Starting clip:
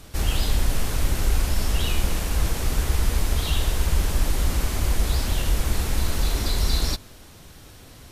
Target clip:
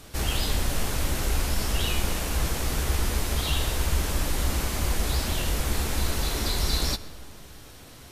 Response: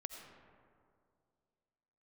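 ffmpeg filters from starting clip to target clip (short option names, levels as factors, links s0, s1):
-filter_complex "[0:a]lowshelf=f=120:g=-6,asplit=2[s0][s1];[1:a]atrim=start_sample=2205,adelay=14[s2];[s1][s2]afir=irnorm=-1:irlink=0,volume=0.422[s3];[s0][s3]amix=inputs=2:normalize=0"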